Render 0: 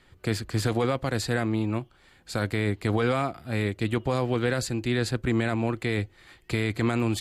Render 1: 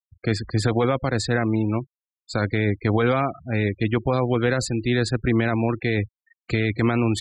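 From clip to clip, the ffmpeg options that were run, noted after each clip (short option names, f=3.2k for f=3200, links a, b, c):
-af "afftfilt=real='re*gte(hypot(re,im),0.02)':imag='im*gte(hypot(re,im),0.02)':win_size=1024:overlap=0.75,volume=4.5dB"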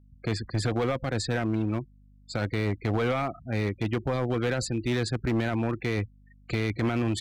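-af "aeval=exprs='val(0)+0.00316*(sin(2*PI*50*n/s)+sin(2*PI*2*50*n/s)/2+sin(2*PI*3*50*n/s)/3+sin(2*PI*4*50*n/s)/4+sin(2*PI*5*50*n/s)/5)':c=same,volume=16.5dB,asoftclip=hard,volume=-16.5dB,volume=-4.5dB"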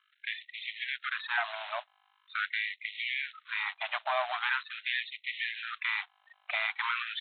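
-af "aresample=8000,acrusher=bits=4:mode=log:mix=0:aa=0.000001,aresample=44100,afftfilt=real='re*gte(b*sr/1024,560*pow(1900/560,0.5+0.5*sin(2*PI*0.43*pts/sr)))':imag='im*gte(b*sr/1024,560*pow(1900/560,0.5+0.5*sin(2*PI*0.43*pts/sr)))':win_size=1024:overlap=0.75,volume=5dB"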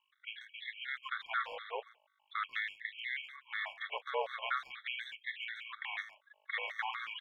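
-filter_complex "[0:a]afreqshift=-170,asplit=2[a][b];[b]adelay=140,highpass=300,lowpass=3.4k,asoftclip=type=hard:threshold=-25.5dB,volume=-14dB[c];[a][c]amix=inputs=2:normalize=0,afftfilt=real='re*gt(sin(2*PI*4.1*pts/sr)*(1-2*mod(floor(b*sr/1024/1100),2)),0)':imag='im*gt(sin(2*PI*4.1*pts/sr)*(1-2*mod(floor(b*sr/1024/1100),2)),0)':win_size=1024:overlap=0.75,volume=-3dB"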